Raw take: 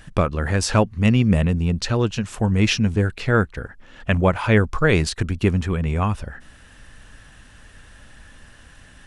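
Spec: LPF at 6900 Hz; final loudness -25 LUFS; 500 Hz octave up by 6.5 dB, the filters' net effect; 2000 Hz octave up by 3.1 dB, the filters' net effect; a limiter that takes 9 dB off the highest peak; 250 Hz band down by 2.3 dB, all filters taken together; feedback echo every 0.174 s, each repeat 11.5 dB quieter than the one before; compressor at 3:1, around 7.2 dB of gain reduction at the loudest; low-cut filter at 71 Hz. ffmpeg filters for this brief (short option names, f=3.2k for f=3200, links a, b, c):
-af "highpass=71,lowpass=6.9k,equalizer=f=250:t=o:g=-5.5,equalizer=f=500:t=o:g=9,equalizer=f=2k:t=o:g=3.5,acompressor=threshold=-18dB:ratio=3,alimiter=limit=-13.5dB:level=0:latency=1,aecho=1:1:174|348|522:0.266|0.0718|0.0194"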